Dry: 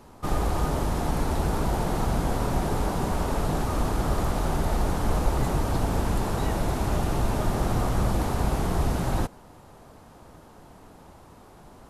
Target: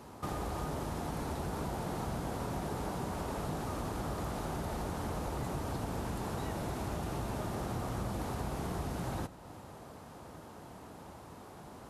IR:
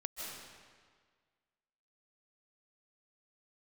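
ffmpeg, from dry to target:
-filter_complex "[0:a]highpass=71,acompressor=threshold=0.0112:ratio=2.5,asplit=2[s0][s1];[1:a]atrim=start_sample=2205,adelay=92[s2];[s1][s2]afir=irnorm=-1:irlink=0,volume=0.15[s3];[s0][s3]amix=inputs=2:normalize=0"

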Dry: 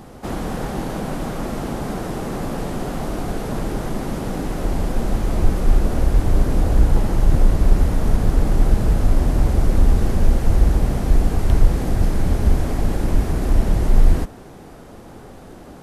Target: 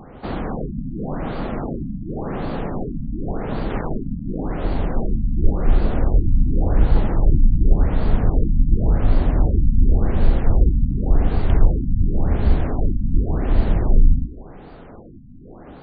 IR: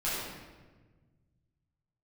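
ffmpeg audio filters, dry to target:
-filter_complex "[0:a]bandreject=f=59:t=h:w=4,bandreject=f=118:t=h:w=4,bandreject=f=177:t=h:w=4,bandreject=f=236:t=h:w=4,bandreject=f=295:t=h:w=4,bandreject=f=354:t=h:w=4,asplit=2[s0][s1];[1:a]atrim=start_sample=2205,asetrate=83790,aresample=44100[s2];[s1][s2]afir=irnorm=-1:irlink=0,volume=0.0562[s3];[s0][s3]amix=inputs=2:normalize=0,asettb=1/sr,asplit=3[s4][s5][s6];[s4]atrim=end=3.704[s7];[s5]atrim=start=3.7:end=4.39,asetpts=PTS-STARTPTS,afade=t=in:d=0.004:c=qsin,afade=t=out:st=0.686:d=0.004:c=qsin,acrusher=bits=3:mix=0:aa=0.5[s8];[s6]atrim=start=4.386[s9];[s7][s8]acrossfade=d=0.004:c1=hsin:c2=qsin[s10];[s10][s9]acrossfade=d=0.004:c1=qsin:c2=hsin,afftfilt=real='re*lt(b*sr/1024,260*pow(4800/260,0.5+0.5*sin(2*PI*0.9*pts/sr)))':imag='im*lt(b*sr/1024,260*pow(4800/260,0.5+0.5*sin(2*PI*0.9*pts/sr)))':win_size=1024:overlap=0.75"

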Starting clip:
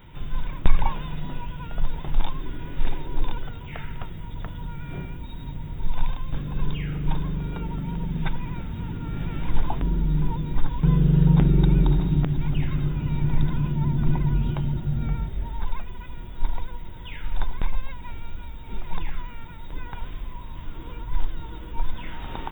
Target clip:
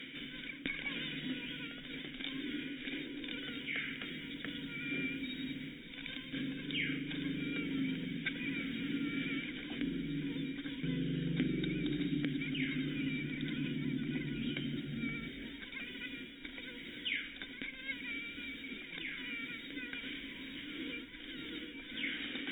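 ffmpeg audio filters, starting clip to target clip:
-filter_complex "[0:a]lowshelf=f=390:g=-9,crystalizer=i=2.5:c=0,equalizer=f=100:t=o:w=0.33:g=-12,equalizer=f=500:t=o:w=0.33:g=8,equalizer=f=800:t=o:w=0.33:g=8,equalizer=f=1600:t=o:w=0.33:g=10,areverse,acompressor=mode=upward:threshold=0.112:ratio=2.5,areverse,asplit=3[s0][s1][s2];[s0]bandpass=f=270:t=q:w=8,volume=1[s3];[s1]bandpass=f=2290:t=q:w=8,volume=0.501[s4];[s2]bandpass=f=3010:t=q:w=8,volume=0.355[s5];[s3][s4][s5]amix=inputs=3:normalize=0,volume=1.88"

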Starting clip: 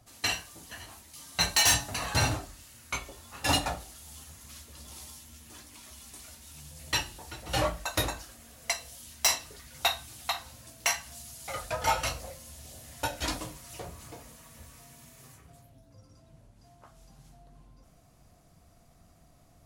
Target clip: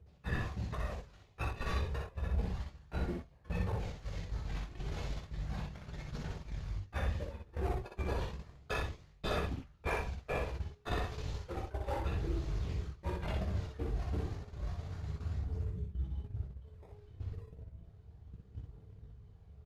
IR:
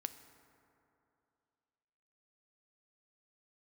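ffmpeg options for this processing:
-filter_complex "[0:a]flanger=delay=6.5:depth=3.2:regen=-51:speed=1.9:shape=triangular,highpass=120,lowpass=7600,aphaser=in_gain=1:out_gain=1:delay=1.8:decay=0.35:speed=0.32:type=triangular,asplit=2[s0][s1];[s1]acrusher=samples=13:mix=1:aa=0.000001:lfo=1:lforange=13:lforate=3.4,volume=0.708[s2];[s0][s2]amix=inputs=2:normalize=0,bass=f=250:g=14,treble=f=4000:g=-8,asetrate=27781,aresample=44100,atempo=1.5874,areverse,acompressor=threshold=0.01:ratio=20,areverse,agate=range=0.251:threshold=0.00501:ratio=16:detection=peak,aecho=1:1:17|60:0.355|0.708,volume=2.11"

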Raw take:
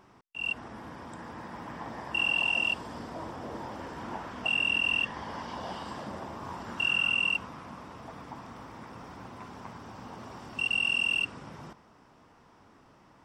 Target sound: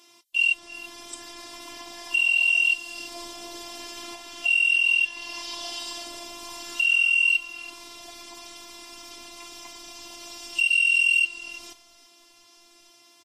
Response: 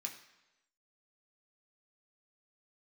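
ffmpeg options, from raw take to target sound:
-filter_complex "[0:a]alimiter=level_in=1.68:limit=0.0631:level=0:latency=1:release=431,volume=0.596,aexciter=amount=10:drive=2.8:freq=2300,afftfilt=real='hypot(re,im)*cos(PI*b)':imag='0':win_size=512:overlap=0.75,asplit=2[s0][s1];[s1]adelay=332.4,volume=0.141,highshelf=f=4000:g=-7.48[s2];[s0][s2]amix=inputs=2:normalize=0,volume=1.12" -ar 44100 -c:a libvorbis -b:a 32k

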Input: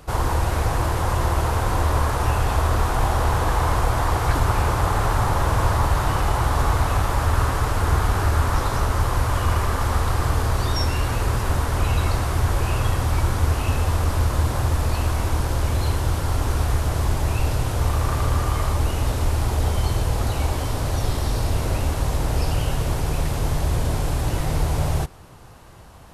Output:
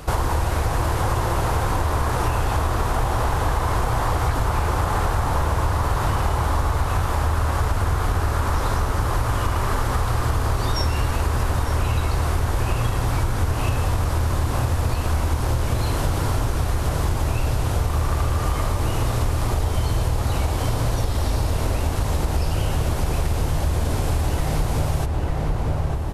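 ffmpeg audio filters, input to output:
-filter_complex "[0:a]asplit=2[s0][s1];[s1]adelay=900,lowpass=f=1700:p=1,volume=0.501,asplit=2[s2][s3];[s3]adelay=900,lowpass=f=1700:p=1,volume=0.51,asplit=2[s4][s5];[s5]adelay=900,lowpass=f=1700:p=1,volume=0.51,asplit=2[s6][s7];[s7]adelay=900,lowpass=f=1700:p=1,volume=0.51,asplit=2[s8][s9];[s9]adelay=900,lowpass=f=1700:p=1,volume=0.51,asplit=2[s10][s11];[s11]adelay=900,lowpass=f=1700:p=1,volume=0.51[s12];[s0][s2][s4][s6][s8][s10][s12]amix=inputs=7:normalize=0,acompressor=threshold=0.0501:ratio=6,volume=2.51"

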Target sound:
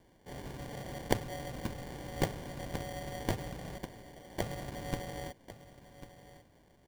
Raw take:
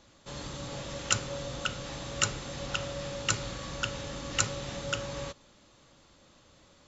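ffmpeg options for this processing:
-filter_complex "[0:a]asettb=1/sr,asplit=3[s0][s1][s2];[s0]atrim=end=3.784[s3];[s1]atrim=start=3.78:end=4.41,asetpts=PTS-STARTPTS,afade=t=in:d=0.004:c=qsin,afade=t=out:st=0.626:d=0.004:c=qsin,aderivative[s4];[s2]atrim=start=4.406[s5];[s3][s4]acrossfade=d=0.004:c1=hsin:c2=qsin[s6];[s6][s5]acrossfade=d=0.004:c1=qsin:c2=hsin,acrusher=samples=34:mix=1:aa=0.000001,aecho=1:1:1096:0.188,volume=0.631"

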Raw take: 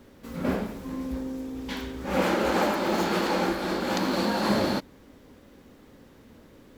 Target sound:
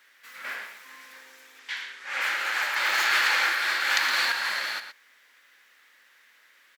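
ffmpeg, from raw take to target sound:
-filter_complex "[0:a]asettb=1/sr,asplit=3[s0][s1][s2];[s0]atrim=end=1.594[s3];[s1]atrim=start=1.59:end=2.21,asetpts=PTS-STARTPTS,afade=t=in:d=0.004:c=qsin,afade=t=out:st=0.616:d=0.004:c=qsin,lowpass=8800[s4];[s2]atrim=start=2.206[s5];[s3][s4]acrossfade=d=0.004:c1=hsin:c2=qsin[s6];[s6][s5]acrossfade=d=0.004:c1=qsin:c2=hsin,asettb=1/sr,asplit=3[s7][s8][s9];[s7]atrim=end=2.764[s10];[s8]atrim=start=2.76:end=4.32,asetpts=PTS-STARTPTS,afade=t=in:d=0.004:c=qsin,afade=t=out:st=1.556:d=0.004:c=qsin,acontrast=51[s11];[s9]atrim=start=4.316[s12];[s10][s11]acrossfade=d=0.004:c1=hsin:c2=qsin[s13];[s13][s12]acrossfade=d=0.004:c1=qsin:c2=hsin,highpass=f=1800:t=q:w=2.5,asplit=2[s14][s15];[s15]adelay=116.6,volume=0.355,highshelf=f=4000:g=-2.62[s16];[s14][s16]amix=inputs=2:normalize=0"

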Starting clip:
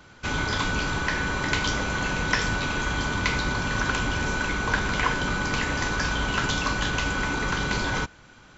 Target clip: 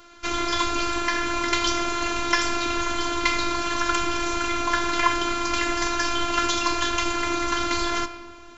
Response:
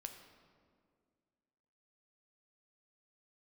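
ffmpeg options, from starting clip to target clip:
-filter_complex "[0:a]asplit=2[s0][s1];[1:a]atrim=start_sample=2205[s2];[s1][s2]afir=irnorm=-1:irlink=0,volume=2.51[s3];[s0][s3]amix=inputs=2:normalize=0,afftfilt=real='hypot(re,im)*cos(PI*b)':imag='0':win_size=512:overlap=0.75,bass=f=250:g=-3,treble=f=4000:g=2,volume=0.841"

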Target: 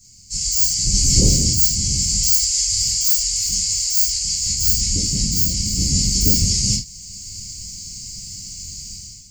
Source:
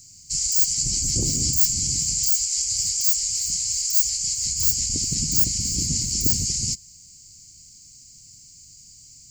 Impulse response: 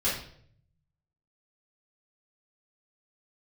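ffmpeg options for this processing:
-filter_complex "[0:a]dynaudnorm=f=110:g=7:m=5.01[s0];[1:a]atrim=start_sample=2205,atrim=end_sample=4410[s1];[s0][s1]afir=irnorm=-1:irlink=0,volume=0.447"

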